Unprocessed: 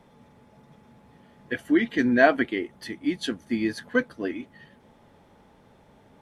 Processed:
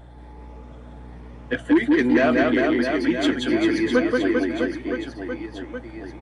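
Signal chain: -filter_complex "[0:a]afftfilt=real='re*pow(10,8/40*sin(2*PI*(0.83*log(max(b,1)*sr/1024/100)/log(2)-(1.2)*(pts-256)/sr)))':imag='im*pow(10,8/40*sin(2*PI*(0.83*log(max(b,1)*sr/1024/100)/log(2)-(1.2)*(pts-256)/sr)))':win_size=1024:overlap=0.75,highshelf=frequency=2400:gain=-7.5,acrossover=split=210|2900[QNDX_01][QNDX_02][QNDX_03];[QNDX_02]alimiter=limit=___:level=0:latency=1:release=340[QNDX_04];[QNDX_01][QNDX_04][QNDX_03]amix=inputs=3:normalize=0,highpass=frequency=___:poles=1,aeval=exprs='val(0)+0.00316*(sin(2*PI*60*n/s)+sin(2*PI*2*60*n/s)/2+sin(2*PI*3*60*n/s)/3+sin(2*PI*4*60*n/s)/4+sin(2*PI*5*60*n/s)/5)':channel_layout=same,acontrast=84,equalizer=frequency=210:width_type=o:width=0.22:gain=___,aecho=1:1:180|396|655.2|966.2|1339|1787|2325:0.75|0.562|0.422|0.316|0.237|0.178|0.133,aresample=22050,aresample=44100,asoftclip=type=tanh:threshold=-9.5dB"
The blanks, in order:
-14.5dB, 150, -11.5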